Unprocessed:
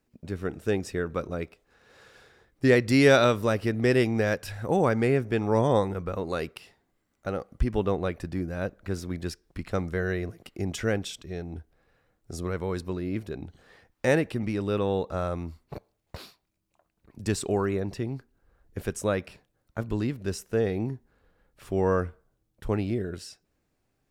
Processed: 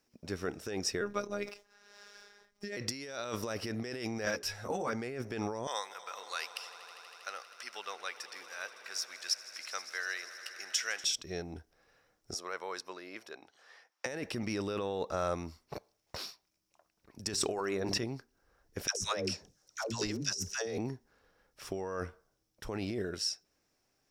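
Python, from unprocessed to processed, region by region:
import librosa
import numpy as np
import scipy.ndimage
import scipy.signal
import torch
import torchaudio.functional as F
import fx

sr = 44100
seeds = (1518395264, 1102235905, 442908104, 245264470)

y = fx.chain(x, sr, fx.median_filter(points=3),
    fx.robotise(hz=204.0),
    fx.sustainer(db_per_s=150.0), at=(1.01, 2.77))
y = fx.chain(y, sr, fx.hum_notches(base_hz=60, count=7),
    fx.ensemble(), at=(4.25, 4.93))
y = fx.chain(y, sr, fx.highpass(hz=1500.0, slope=12),
    fx.echo_swell(ms=80, loudest=5, wet_db=-18.0), at=(5.67, 11.04))
y = fx.chain(y, sr, fx.highpass(hz=840.0, slope=12),
    fx.tilt_eq(slope=-2.0), at=(12.34, 14.06))
y = fx.chain(y, sr, fx.hum_notches(base_hz=50, count=8),
    fx.sustainer(db_per_s=26.0), at=(17.32, 18.04))
y = fx.chain(y, sr, fx.peak_eq(hz=6200.0, db=13.5, octaves=1.1),
    fx.dispersion(late='lows', ms=146.0, hz=490.0), at=(18.87, 20.78))
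y = fx.peak_eq(y, sr, hz=5500.0, db=13.0, octaves=0.32)
y = fx.over_compress(y, sr, threshold_db=-29.0, ratio=-1.0)
y = fx.low_shelf(y, sr, hz=270.0, db=-11.5)
y = y * librosa.db_to_amplitude(-2.5)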